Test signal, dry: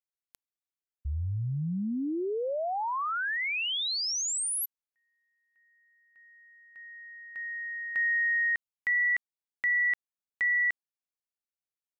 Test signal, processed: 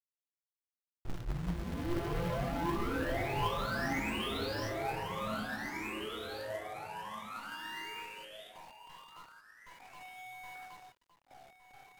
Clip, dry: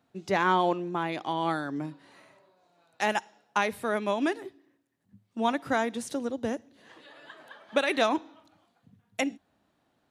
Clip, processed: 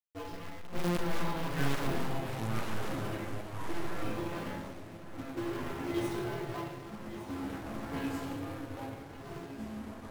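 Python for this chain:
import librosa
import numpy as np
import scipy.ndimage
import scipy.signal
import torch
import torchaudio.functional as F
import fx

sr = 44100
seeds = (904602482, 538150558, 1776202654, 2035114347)

y = fx.cycle_switch(x, sr, every=2, mode='inverted')
y = fx.over_compress(y, sr, threshold_db=-33.0, ratio=-0.5)
y = fx.room_shoebox(y, sr, seeds[0], volume_m3=690.0, walls='mixed', distance_m=3.3)
y = fx.env_lowpass(y, sr, base_hz=400.0, full_db=-20.5)
y = fx.comb_fb(y, sr, f0_hz=170.0, decay_s=0.34, harmonics='all', damping=0.3, mix_pct=90)
y = fx.quant_companded(y, sr, bits=4)
y = fx.dynamic_eq(y, sr, hz=7300.0, q=1.0, threshold_db=-53.0, ratio=4.0, max_db=-5)
y = 10.0 ** (-22.5 / 20.0) * (np.abs((y / 10.0 ** (-22.5 / 20.0) + 3.0) % 4.0 - 2.0) - 1.0)
y = fx.high_shelf(y, sr, hz=3900.0, db=-7.0)
y = y + 10.0 ** (-12.5 / 20.0) * np.pad(y, (int(1162 * sr / 1000.0), 0))[:len(y)]
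y = fx.echo_pitch(y, sr, ms=529, semitones=-4, count=2, db_per_echo=-3.0)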